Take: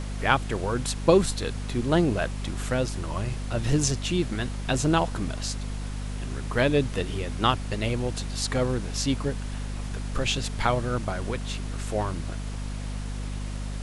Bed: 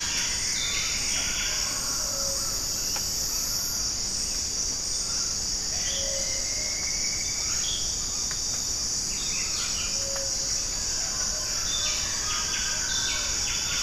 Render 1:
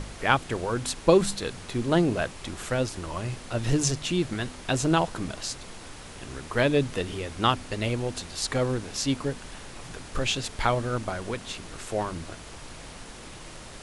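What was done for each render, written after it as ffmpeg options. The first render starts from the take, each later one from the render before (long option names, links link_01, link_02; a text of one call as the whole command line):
ffmpeg -i in.wav -af "bandreject=frequency=50:width_type=h:width=4,bandreject=frequency=100:width_type=h:width=4,bandreject=frequency=150:width_type=h:width=4,bandreject=frequency=200:width_type=h:width=4,bandreject=frequency=250:width_type=h:width=4" out.wav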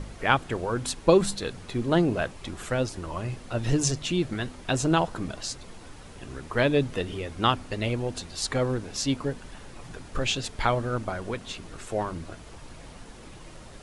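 ffmpeg -i in.wav -af "afftdn=noise_reduction=7:noise_floor=-43" out.wav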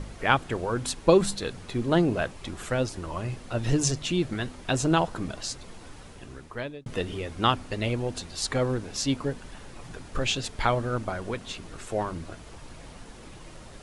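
ffmpeg -i in.wav -filter_complex "[0:a]asplit=2[link_01][link_02];[link_01]atrim=end=6.86,asetpts=PTS-STARTPTS,afade=type=out:start_time=6:duration=0.86[link_03];[link_02]atrim=start=6.86,asetpts=PTS-STARTPTS,afade=type=in:duration=0.004:curve=hsin[link_04];[link_03][link_04]concat=n=2:v=0:a=1" out.wav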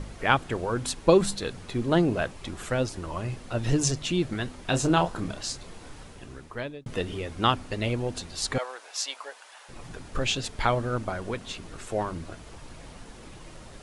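ffmpeg -i in.wav -filter_complex "[0:a]asettb=1/sr,asplit=3[link_01][link_02][link_03];[link_01]atrim=end=4.664[link_04];[link_02]atrim=start=4.66:end=6.04,asetpts=PTS-STARTPTS,afade=type=in:duration=0.004:curve=qsin,afade=type=out:start_time=1.376:duration=0.004:curve=qsin,asplit=2[link_05][link_06];[link_06]adelay=29,volume=-7.5dB[link_07];[link_05][link_07]amix=inputs=2:normalize=0,atrim=end_sample=60858[link_08];[link_03]atrim=start=6.036[link_09];[link_04][link_08]acrossfade=duration=0.004:curve1=hsin:curve2=qsin[link_10];[link_10][link_09]acrossfade=duration=0.004:curve1=qsin:curve2=hsin,asettb=1/sr,asplit=3[link_11][link_12][link_13];[link_11]atrim=end=8.584[link_14];[link_12]atrim=start=8.58:end=9.69,asetpts=PTS-STARTPTS,afade=type=in:duration=0.004:curve=qsin,afade=type=out:start_time=1.106:duration=0.004:curve=qsin,highpass=frequency=660:width=0.5412,highpass=frequency=660:width=1.3066[link_15];[link_13]atrim=start=9.686[link_16];[link_14][link_15]acrossfade=duration=0.004:curve1=hsin:curve2=qsin[link_17];[link_17][link_16]acrossfade=duration=0.004:curve1=qsin:curve2=hsin" out.wav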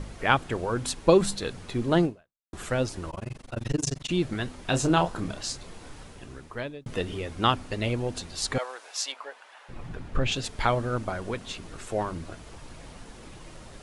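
ffmpeg -i in.wav -filter_complex "[0:a]asettb=1/sr,asplit=3[link_01][link_02][link_03];[link_01]atrim=end=3.104[link_04];[link_02]atrim=start=3.1:end=4.1,asetpts=PTS-STARTPTS,afade=type=in:duration=0.004:curve=qsin,afade=type=out:start_time=0.996:duration=0.004:curve=qsin,tremolo=f=23:d=1[link_05];[link_03]atrim=start=4.096[link_06];[link_04][link_05]acrossfade=duration=0.004:curve1=hsin:curve2=qsin[link_07];[link_07][link_06]acrossfade=duration=0.004:curve1=qsin:curve2=hsin,asettb=1/sr,asplit=3[link_08][link_09][link_10];[link_08]atrim=end=9.124[link_11];[link_09]atrim=start=9.12:end=10.32,asetpts=PTS-STARTPTS,afade=type=in:duration=0.004:curve=qsin,afade=type=out:start_time=1.196:duration=0.004:curve=qsin,bass=frequency=250:gain=5,treble=frequency=4000:gain=-11[link_12];[link_10]atrim=start=10.316[link_13];[link_11][link_12]acrossfade=duration=0.004:curve1=hsin:curve2=qsin[link_14];[link_14][link_13]acrossfade=duration=0.004:curve1=qsin:curve2=hsin,asplit=2[link_15][link_16];[link_15]atrim=end=2.53,asetpts=PTS-STARTPTS,afade=type=out:start_time=2.05:duration=0.48:curve=exp[link_17];[link_16]atrim=start=2.53,asetpts=PTS-STARTPTS,afade=type=in:duration=0.004:curve=hsin[link_18];[link_17][link_18]concat=n=2:v=0:a=1" out.wav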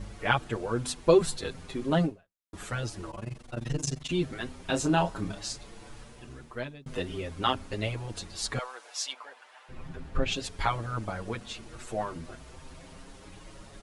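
ffmpeg -i in.wav -filter_complex "[0:a]asplit=2[link_01][link_02];[link_02]adelay=6.7,afreqshift=0.36[link_03];[link_01][link_03]amix=inputs=2:normalize=1" out.wav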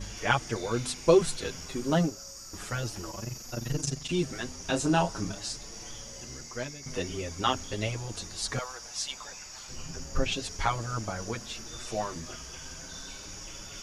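ffmpeg -i in.wav -i bed.wav -filter_complex "[1:a]volume=-17dB[link_01];[0:a][link_01]amix=inputs=2:normalize=0" out.wav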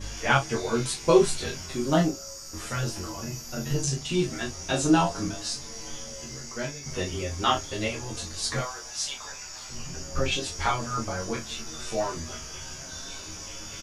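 ffmpeg -i in.wav -filter_complex "[0:a]asplit=2[link_01][link_02];[link_02]adelay=22,volume=-3.5dB[link_03];[link_01][link_03]amix=inputs=2:normalize=0,aecho=1:1:13|38:0.668|0.398" out.wav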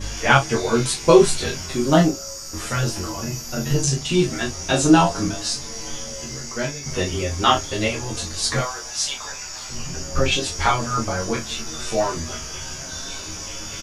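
ffmpeg -i in.wav -af "volume=7dB,alimiter=limit=-1dB:level=0:latency=1" out.wav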